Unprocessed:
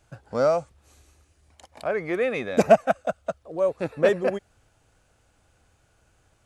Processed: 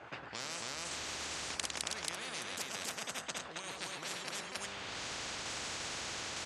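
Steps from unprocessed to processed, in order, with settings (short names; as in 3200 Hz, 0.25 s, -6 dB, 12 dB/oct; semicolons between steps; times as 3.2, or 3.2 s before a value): recorder AGC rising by 36 dB/s; low-pass opened by the level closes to 1700 Hz, open at -15 dBFS; on a send: loudspeakers at several distances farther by 36 m -12 dB, 94 m -3 dB; on the sum: tremolo saw down 1.1 Hz, depth 45%; de-hum 49.88 Hz, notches 39; reverse; compressor 10:1, threshold -29 dBFS, peak gain reduction 18 dB; reverse; weighting filter A; spectral compressor 10:1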